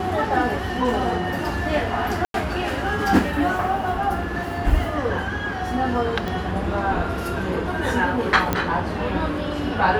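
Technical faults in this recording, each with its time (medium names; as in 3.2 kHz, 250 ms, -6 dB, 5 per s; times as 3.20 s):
2.25–2.34 s: dropout 92 ms
6.28 s: pop
8.53 s: pop -6 dBFS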